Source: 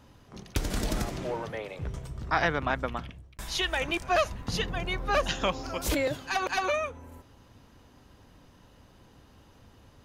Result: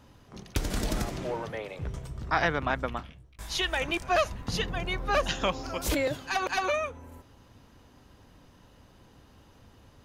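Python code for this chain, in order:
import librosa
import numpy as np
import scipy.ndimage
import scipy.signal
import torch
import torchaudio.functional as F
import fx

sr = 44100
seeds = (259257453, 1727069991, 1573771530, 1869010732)

y = fx.detune_double(x, sr, cents=41, at=(2.98, 3.49), fade=0.02)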